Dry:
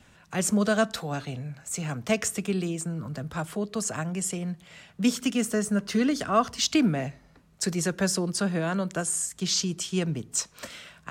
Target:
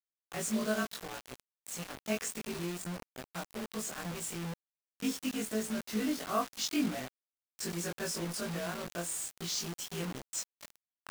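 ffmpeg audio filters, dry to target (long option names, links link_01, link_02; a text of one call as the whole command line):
ffmpeg -i in.wav -af "afftfilt=real='re':imag='-im':win_size=2048:overlap=0.75,highpass=frequency=170:width=0.5412,highpass=frequency=170:width=1.3066,acrusher=bits=5:mix=0:aa=0.000001,volume=-5dB" out.wav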